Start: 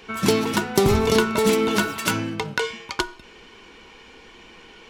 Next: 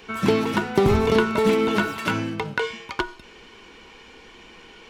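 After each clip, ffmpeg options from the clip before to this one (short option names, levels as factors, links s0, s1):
-filter_complex "[0:a]acrossover=split=3400[s0][s1];[s1]acompressor=threshold=0.00891:ratio=4:attack=1:release=60[s2];[s0][s2]amix=inputs=2:normalize=0"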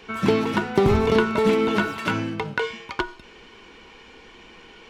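-af "highshelf=f=7800:g=-7.5"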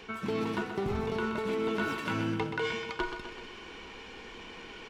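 -af "areverse,acompressor=threshold=0.0355:ratio=12,areverse,aecho=1:1:127|254|381|508|635|762|889:0.398|0.227|0.129|0.0737|0.042|0.024|0.0137"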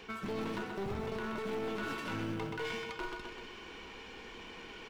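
-af "alimiter=level_in=1.06:limit=0.0631:level=0:latency=1:release=40,volume=0.944,acrusher=bits=9:mode=log:mix=0:aa=0.000001,aeval=exprs='clip(val(0),-1,0.0158)':c=same,volume=0.75"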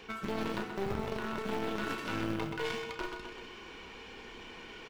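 -filter_complex "[0:a]asplit=2[s0][s1];[s1]acrusher=bits=4:mix=0:aa=0.5,volume=0.631[s2];[s0][s2]amix=inputs=2:normalize=0,asplit=2[s3][s4];[s4]adelay=33,volume=0.299[s5];[s3][s5]amix=inputs=2:normalize=0"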